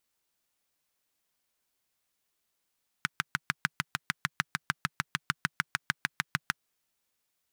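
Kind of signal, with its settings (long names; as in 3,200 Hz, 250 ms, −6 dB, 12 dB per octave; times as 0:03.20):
pulse-train model of a single-cylinder engine, steady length 3.59 s, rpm 800, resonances 150/1,500 Hz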